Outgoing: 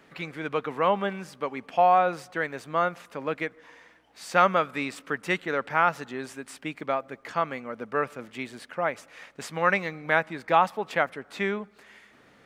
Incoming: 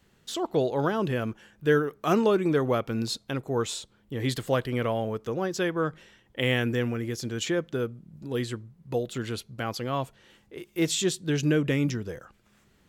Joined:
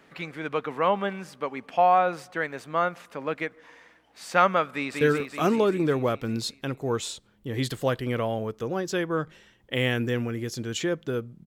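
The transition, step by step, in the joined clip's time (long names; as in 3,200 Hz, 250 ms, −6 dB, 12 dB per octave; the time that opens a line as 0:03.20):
outgoing
0:04.74–0:05.01: delay throw 190 ms, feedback 70%, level −3 dB
0:05.01: continue with incoming from 0:01.67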